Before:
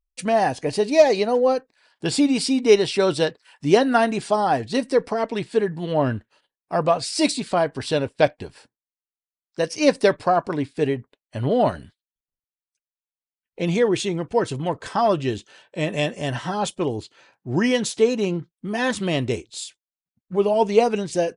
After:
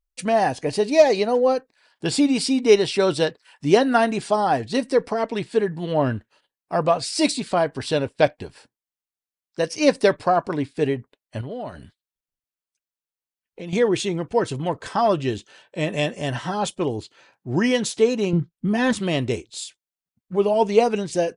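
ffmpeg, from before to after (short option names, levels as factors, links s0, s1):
-filter_complex "[0:a]asettb=1/sr,asplit=3[s0][s1][s2];[s0]atrim=end=11.414[s3];[s1]atrim=start=11.41:end=13.73,asetpts=PTS-STARTPTS,afade=t=in:d=0.004:c=qsin,afade=t=out:st=2.316:d=0.004:c=qsin,acompressor=threshold=0.0178:ratio=2.5:attack=3.2:release=140:knee=1:detection=peak[s4];[s2]atrim=start=13.726[s5];[s3][s4]acrossfade=d=0.004:c1=hsin:c2=qsin[s6];[s6][s5]acrossfade=d=0.004:c1=qsin:c2=hsin,asettb=1/sr,asplit=3[s7][s8][s9];[s7]atrim=end=18.334[s10];[s8]atrim=start=18.33:end=18.93,asetpts=PTS-STARTPTS,afade=t=in:d=0.004:c=qsin,afade=t=out:st=0.596:d=0.004:c=qsin,bass=f=250:g=11,treble=f=4000:g=-3[s11];[s9]atrim=start=18.926[s12];[s10][s11]acrossfade=d=0.004:c1=hsin:c2=qsin[s13];[s13][s12]acrossfade=d=0.004:c1=qsin:c2=hsin"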